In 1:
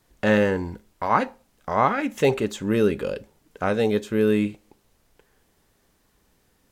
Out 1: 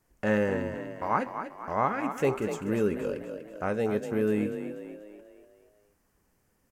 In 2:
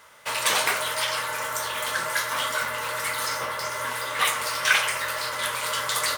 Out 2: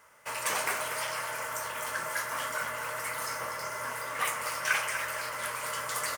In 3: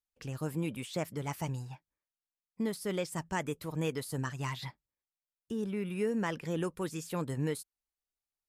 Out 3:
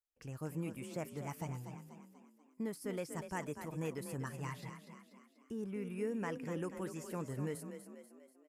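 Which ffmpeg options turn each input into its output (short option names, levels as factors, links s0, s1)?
-filter_complex "[0:a]equalizer=f=3700:w=2.5:g=-11.5,asplit=7[s0][s1][s2][s3][s4][s5][s6];[s1]adelay=243,afreqshift=33,volume=0.355[s7];[s2]adelay=486,afreqshift=66,volume=0.174[s8];[s3]adelay=729,afreqshift=99,volume=0.0851[s9];[s4]adelay=972,afreqshift=132,volume=0.0417[s10];[s5]adelay=1215,afreqshift=165,volume=0.0204[s11];[s6]adelay=1458,afreqshift=198,volume=0.01[s12];[s0][s7][s8][s9][s10][s11][s12]amix=inputs=7:normalize=0,volume=0.473"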